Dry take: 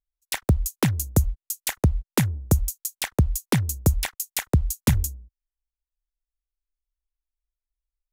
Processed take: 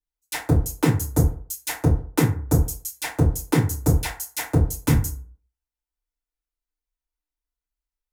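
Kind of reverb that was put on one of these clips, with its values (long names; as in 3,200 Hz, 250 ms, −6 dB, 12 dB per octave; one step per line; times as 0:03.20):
feedback delay network reverb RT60 0.45 s, low-frequency decay 0.85×, high-frequency decay 0.5×, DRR −10 dB
level −8.5 dB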